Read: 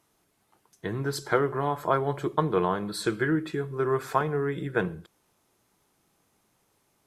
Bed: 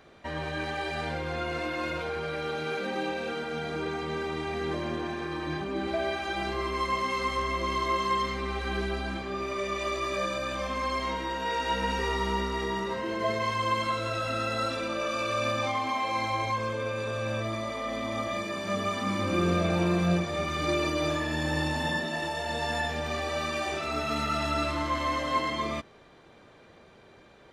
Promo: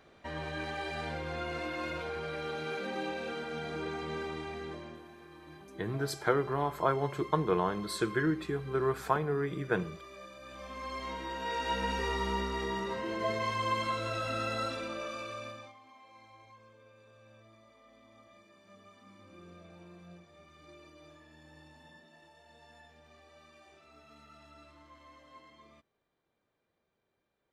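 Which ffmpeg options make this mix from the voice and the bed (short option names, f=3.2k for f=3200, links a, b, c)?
-filter_complex "[0:a]adelay=4950,volume=-4dB[a];[1:a]volume=10dB,afade=t=out:st=4.2:d=0.84:silence=0.199526,afade=t=in:st=10.37:d=1.34:silence=0.177828,afade=t=out:st=14.5:d=1.25:silence=0.0668344[b];[a][b]amix=inputs=2:normalize=0"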